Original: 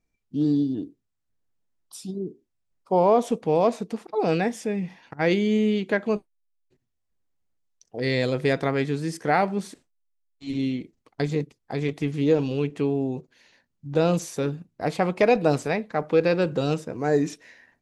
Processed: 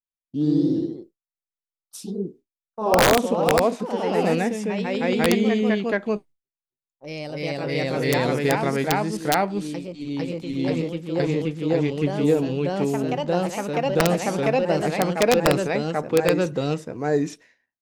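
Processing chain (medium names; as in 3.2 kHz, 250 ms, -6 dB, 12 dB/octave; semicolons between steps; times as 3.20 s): ever faster or slower copies 109 ms, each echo +1 st, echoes 3; expander -40 dBFS; integer overflow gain 8 dB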